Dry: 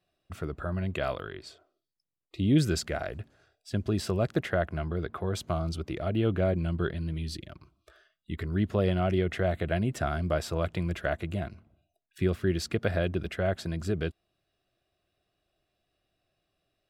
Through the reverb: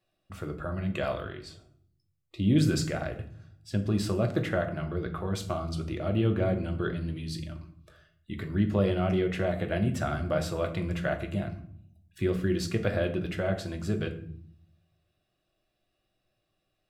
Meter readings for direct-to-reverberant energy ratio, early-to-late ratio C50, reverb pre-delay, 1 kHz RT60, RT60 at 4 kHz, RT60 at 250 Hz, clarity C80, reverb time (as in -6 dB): 3.5 dB, 11.5 dB, 4 ms, 0.50 s, 0.40 s, 0.90 s, 15.0 dB, 0.55 s